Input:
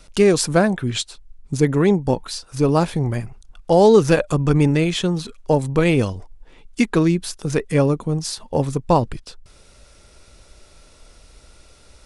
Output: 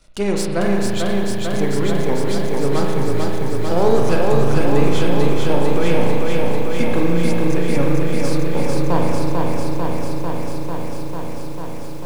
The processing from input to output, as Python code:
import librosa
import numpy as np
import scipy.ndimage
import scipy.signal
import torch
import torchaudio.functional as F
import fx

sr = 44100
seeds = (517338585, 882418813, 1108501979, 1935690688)

y = np.where(x < 0.0, 10.0 ** (-7.0 / 20.0) * x, x)
y = fx.rev_spring(y, sr, rt60_s=2.1, pass_ms=(35,), chirp_ms=25, drr_db=0.0)
y = fx.echo_crushed(y, sr, ms=446, feedback_pct=80, bits=7, wet_db=-3)
y = y * librosa.db_to_amplitude(-4.0)